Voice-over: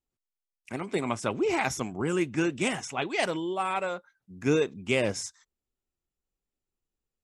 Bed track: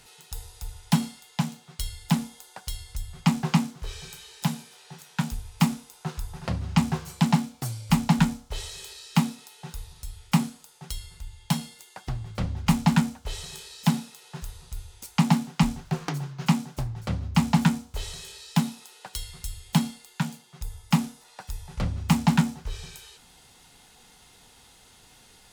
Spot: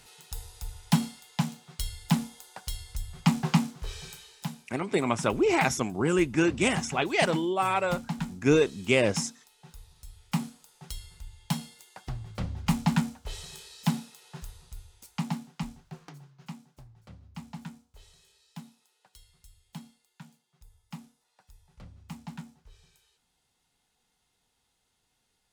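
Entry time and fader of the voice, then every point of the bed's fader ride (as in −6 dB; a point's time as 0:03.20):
4.00 s, +3.0 dB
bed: 0:04.10 −1.5 dB
0:04.63 −12.5 dB
0:09.56 −12.5 dB
0:10.80 −4.5 dB
0:14.37 −4.5 dB
0:16.61 −21 dB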